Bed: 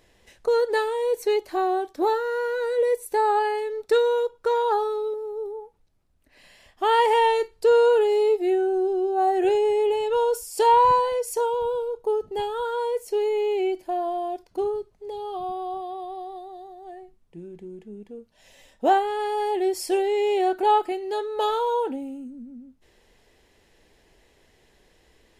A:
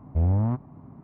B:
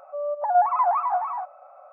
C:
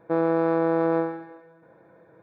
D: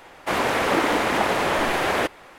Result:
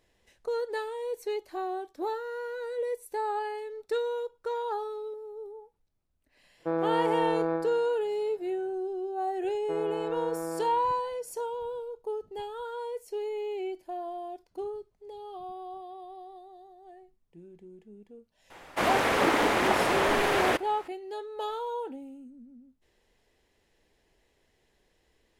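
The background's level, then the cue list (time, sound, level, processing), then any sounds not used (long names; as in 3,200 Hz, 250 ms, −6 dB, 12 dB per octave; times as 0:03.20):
bed −10 dB
0:06.56: mix in C −6 dB, fades 0.10 s
0:09.59: mix in C −12 dB
0:18.50: mix in D −3.5 dB
not used: A, B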